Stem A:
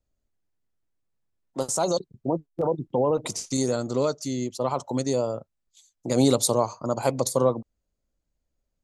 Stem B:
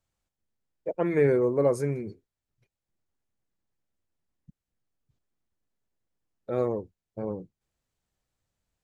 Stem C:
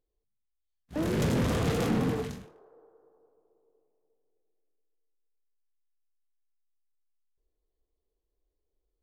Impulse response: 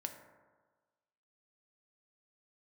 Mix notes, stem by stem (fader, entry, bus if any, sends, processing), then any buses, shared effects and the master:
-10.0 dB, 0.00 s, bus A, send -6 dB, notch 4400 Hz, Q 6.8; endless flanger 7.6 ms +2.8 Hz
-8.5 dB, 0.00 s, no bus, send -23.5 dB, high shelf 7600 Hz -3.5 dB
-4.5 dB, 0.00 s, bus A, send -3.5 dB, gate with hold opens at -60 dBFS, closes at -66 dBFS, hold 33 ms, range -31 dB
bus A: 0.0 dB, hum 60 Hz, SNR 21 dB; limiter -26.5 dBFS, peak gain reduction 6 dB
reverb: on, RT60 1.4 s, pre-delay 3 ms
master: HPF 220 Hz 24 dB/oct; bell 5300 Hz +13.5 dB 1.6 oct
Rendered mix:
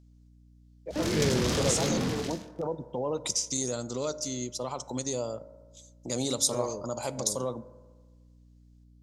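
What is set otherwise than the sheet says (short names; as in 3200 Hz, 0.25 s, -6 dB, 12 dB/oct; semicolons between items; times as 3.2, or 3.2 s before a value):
stem A: missing endless flanger 7.6 ms +2.8 Hz; stem C: missing gate with hold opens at -60 dBFS, closes at -66 dBFS, hold 33 ms, range -31 dB; master: missing HPF 220 Hz 24 dB/oct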